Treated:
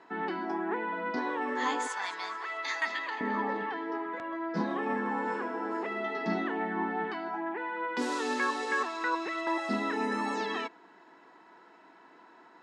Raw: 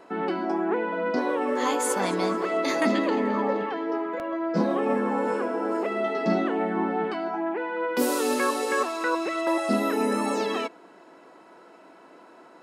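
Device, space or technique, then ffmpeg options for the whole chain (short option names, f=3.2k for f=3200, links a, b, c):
car door speaker: -filter_complex "[0:a]asettb=1/sr,asplit=3[a][b][c];[a]atrim=end=1.874[d];[b]atrim=start=1.87:end=3.21,asetpts=PTS-STARTPTS,afade=t=in:d=0.004:c=qsin,afade=t=out:st=1.336:d=0.004:c=qsin,highpass=990[e];[c]atrim=start=3.206[f];[d][e]acrossfade=d=0.004:c1=hsin:c2=qsin[g];[g][f]acrossfade=d=0.004:c1=qsin:c2=hsin,highpass=100,equalizer=f=560:t=q:w=4:g=-9,equalizer=f=930:t=q:w=4:g=6,equalizer=f=1.8k:t=q:w=4:g=9,equalizer=f=3.6k:t=q:w=4:g=4,lowpass=f=7.2k:w=0.5412,lowpass=f=7.2k:w=1.3066,volume=-7dB"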